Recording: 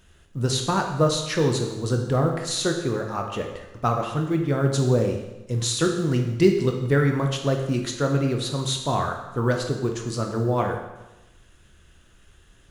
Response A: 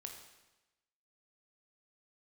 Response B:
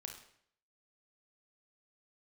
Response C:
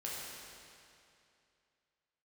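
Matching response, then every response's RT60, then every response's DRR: A; 1.0, 0.65, 2.6 seconds; 2.5, 2.5, −6.0 decibels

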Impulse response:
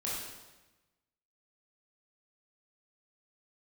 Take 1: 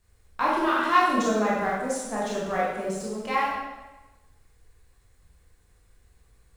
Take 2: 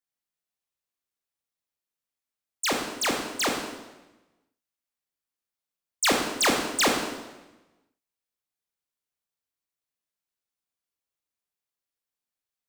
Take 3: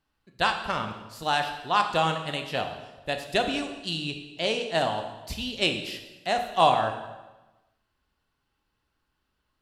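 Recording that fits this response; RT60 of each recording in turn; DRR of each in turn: 1; 1.1, 1.1, 1.1 seconds; −6.5, 1.0, 5.5 decibels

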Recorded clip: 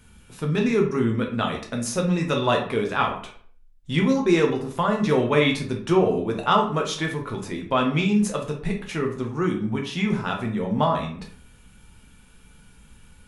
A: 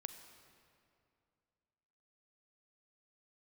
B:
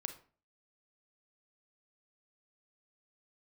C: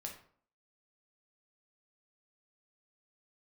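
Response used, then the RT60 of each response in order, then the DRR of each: C; 2.5, 0.40, 0.55 seconds; 8.5, 7.5, 0.5 decibels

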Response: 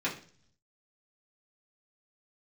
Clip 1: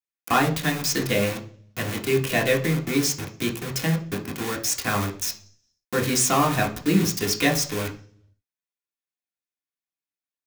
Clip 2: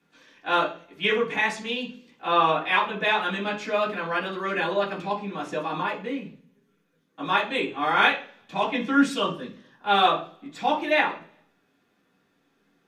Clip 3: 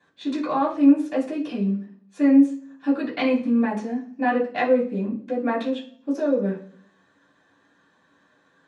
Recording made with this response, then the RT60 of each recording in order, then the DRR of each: 2; 0.45, 0.45, 0.45 seconds; 0.0, −7.5, −13.5 decibels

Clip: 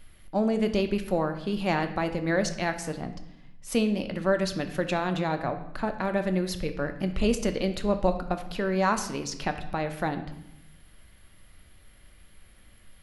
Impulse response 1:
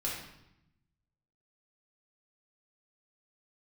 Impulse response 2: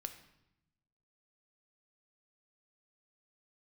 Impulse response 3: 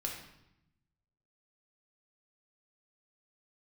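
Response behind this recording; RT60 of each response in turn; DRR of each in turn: 2; 0.80, 0.85, 0.80 seconds; −5.5, 7.0, −1.0 decibels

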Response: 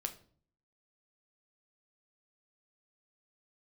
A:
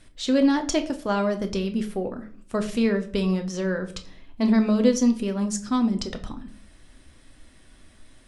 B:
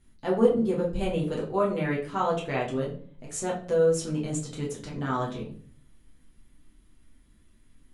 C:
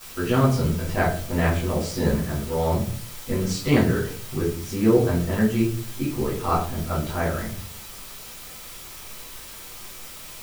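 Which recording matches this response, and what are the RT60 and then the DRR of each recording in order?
A; 0.50, 0.50, 0.50 seconds; 6.0, −4.0, −12.5 decibels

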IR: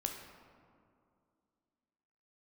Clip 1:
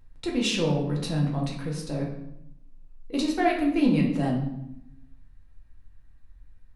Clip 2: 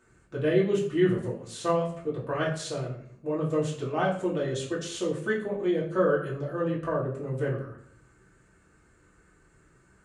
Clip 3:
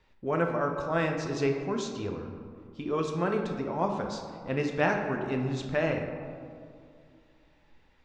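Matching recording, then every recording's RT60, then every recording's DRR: 3; 0.80, 0.60, 2.4 seconds; −2.5, −7.0, 2.5 decibels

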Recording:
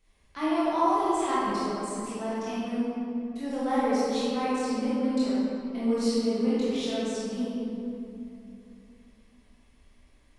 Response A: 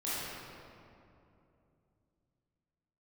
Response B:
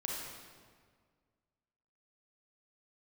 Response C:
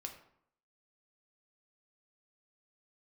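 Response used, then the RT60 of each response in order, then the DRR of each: A; 2.8, 1.8, 0.70 seconds; −11.0, −3.0, 3.0 decibels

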